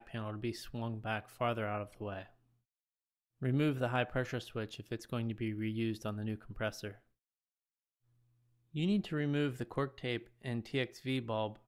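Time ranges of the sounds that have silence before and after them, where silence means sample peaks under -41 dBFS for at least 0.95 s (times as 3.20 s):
3.42–6.91 s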